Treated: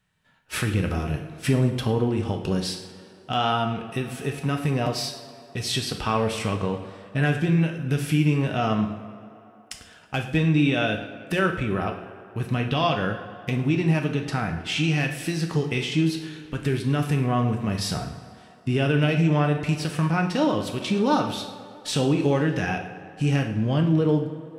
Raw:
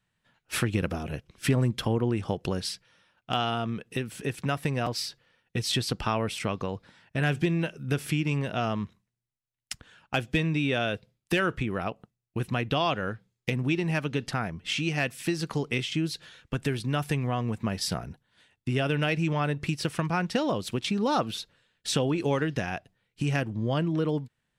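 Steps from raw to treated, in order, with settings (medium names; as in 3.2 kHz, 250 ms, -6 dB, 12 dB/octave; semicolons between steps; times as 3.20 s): harmonic-percussive split percussive -8 dB; in parallel at +1 dB: peak limiter -22 dBFS, peak gain reduction 7 dB; on the sum: tape echo 108 ms, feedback 84%, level -15 dB, low-pass 3.8 kHz; two-slope reverb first 0.54 s, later 1.9 s, from -17 dB, DRR 3.5 dB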